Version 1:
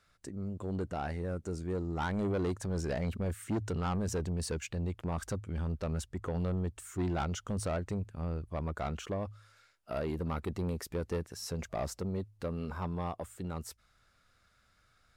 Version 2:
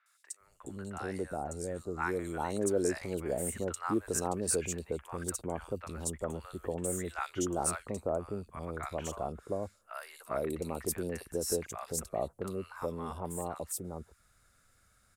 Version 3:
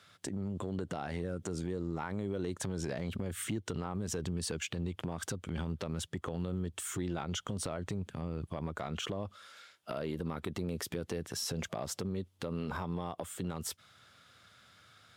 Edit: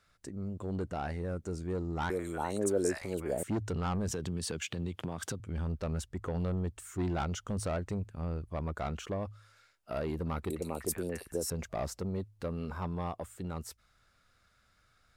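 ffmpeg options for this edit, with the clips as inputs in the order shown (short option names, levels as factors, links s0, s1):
-filter_complex "[1:a]asplit=2[s0][s1];[0:a]asplit=4[s2][s3][s4][s5];[s2]atrim=end=2.102[s6];[s0]atrim=start=2.098:end=3.432[s7];[s3]atrim=start=3.428:end=4.112[s8];[2:a]atrim=start=4.108:end=5.402[s9];[s4]atrim=start=5.398:end=10.502[s10];[s1]atrim=start=10.498:end=11.502[s11];[s5]atrim=start=11.498[s12];[s6][s7]acrossfade=d=0.004:c1=hsin:c2=hsin[s13];[s13][s8]acrossfade=d=0.004:c1=hsin:c2=hsin[s14];[s14][s9]acrossfade=d=0.004:c1=hsin:c2=hsin[s15];[s15][s10]acrossfade=d=0.004:c1=hsin:c2=hsin[s16];[s16][s11]acrossfade=d=0.004:c1=hsin:c2=hsin[s17];[s17][s12]acrossfade=d=0.004:c1=hsin:c2=hsin"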